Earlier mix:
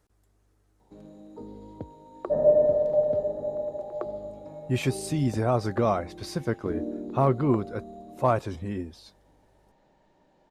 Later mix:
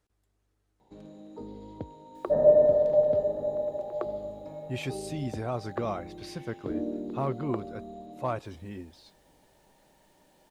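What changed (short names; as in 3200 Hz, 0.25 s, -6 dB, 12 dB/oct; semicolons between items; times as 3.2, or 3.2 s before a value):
speech -8.5 dB; second sound: remove air absorption 170 m; master: add bell 3100 Hz +5 dB 1.4 oct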